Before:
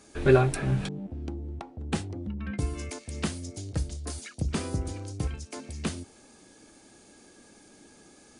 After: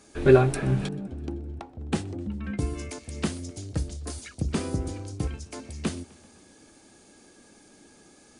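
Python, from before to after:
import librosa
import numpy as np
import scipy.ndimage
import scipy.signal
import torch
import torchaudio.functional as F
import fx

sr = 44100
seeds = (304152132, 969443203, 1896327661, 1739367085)

y = fx.dynamic_eq(x, sr, hz=320.0, q=0.72, threshold_db=-39.0, ratio=4.0, max_db=4)
y = fx.echo_warbled(y, sr, ms=129, feedback_pct=69, rate_hz=2.8, cents=141, wet_db=-23.5)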